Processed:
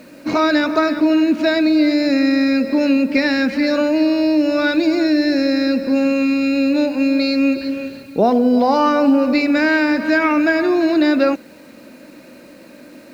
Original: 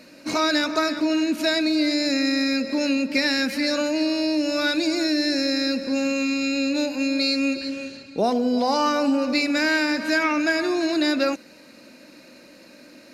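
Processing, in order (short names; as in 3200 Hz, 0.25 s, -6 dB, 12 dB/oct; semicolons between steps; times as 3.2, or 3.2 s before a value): tape spacing loss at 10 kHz 25 dB; requantised 10-bit, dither none; gain +8.5 dB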